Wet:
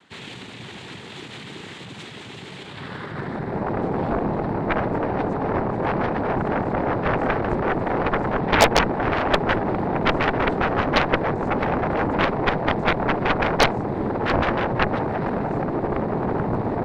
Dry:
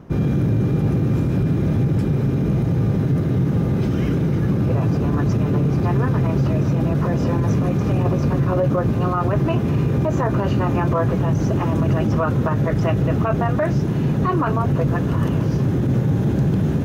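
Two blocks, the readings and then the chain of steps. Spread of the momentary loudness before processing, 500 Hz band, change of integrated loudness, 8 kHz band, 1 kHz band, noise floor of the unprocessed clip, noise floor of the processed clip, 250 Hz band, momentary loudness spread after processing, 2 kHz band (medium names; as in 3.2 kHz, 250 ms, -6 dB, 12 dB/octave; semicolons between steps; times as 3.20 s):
1 LU, +0.5 dB, -3.0 dB, no reading, +5.0 dB, -21 dBFS, -39 dBFS, -6.0 dB, 16 LU, +8.5 dB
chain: band-pass sweep 2.9 kHz -> 540 Hz, 2.55–3.71 s; noise-vocoded speech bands 6; Chebyshev shaper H 3 -14 dB, 6 -9 dB, 7 -9 dB, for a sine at -11.5 dBFS; trim +3.5 dB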